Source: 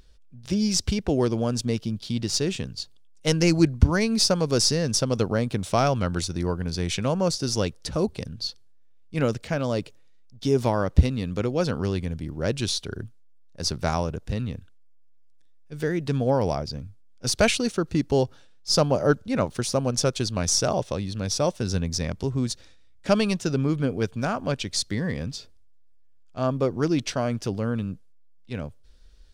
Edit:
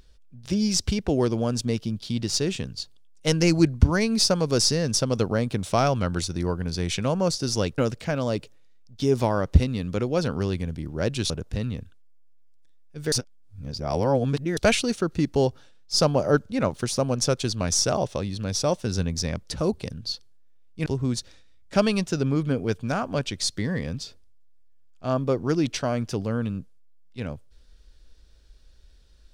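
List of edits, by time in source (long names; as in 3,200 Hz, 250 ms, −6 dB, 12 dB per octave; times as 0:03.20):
0:07.78–0:09.21: move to 0:22.19
0:12.73–0:14.06: remove
0:15.88–0:17.33: reverse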